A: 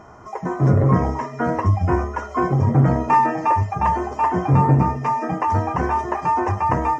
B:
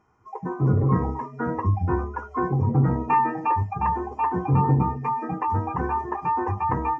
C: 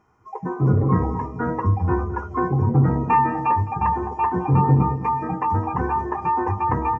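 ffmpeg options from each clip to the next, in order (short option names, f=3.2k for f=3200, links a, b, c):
-af "afftdn=nr=16:nf=-28,superequalizer=8b=0.316:12b=1.78,volume=-4.5dB"
-filter_complex "[0:a]asplit=2[a][b];[b]adelay=212,lowpass=f=810:p=1,volume=-11dB,asplit=2[c][d];[d]adelay=212,lowpass=f=810:p=1,volume=0.48,asplit=2[e][f];[f]adelay=212,lowpass=f=810:p=1,volume=0.48,asplit=2[g][h];[h]adelay=212,lowpass=f=810:p=1,volume=0.48,asplit=2[i][j];[j]adelay=212,lowpass=f=810:p=1,volume=0.48[k];[a][c][e][g][i][k]amix=inputs=6:normalize=0,volume=2.5dB"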